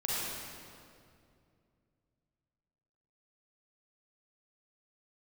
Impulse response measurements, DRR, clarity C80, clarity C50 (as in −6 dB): −7.0 dB, −2.5 dB, −5.5 dB